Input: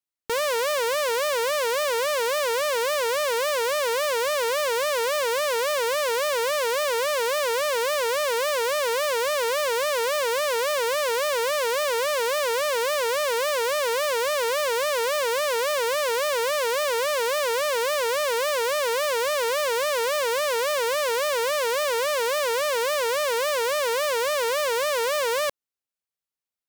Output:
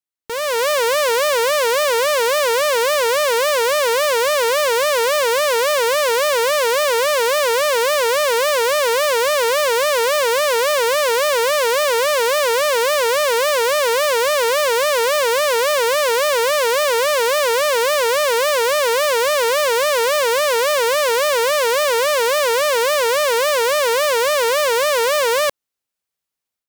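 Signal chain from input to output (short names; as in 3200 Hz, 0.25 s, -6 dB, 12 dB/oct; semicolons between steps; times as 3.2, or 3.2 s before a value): AGC gain up to 9 dB; gain -1.5 dB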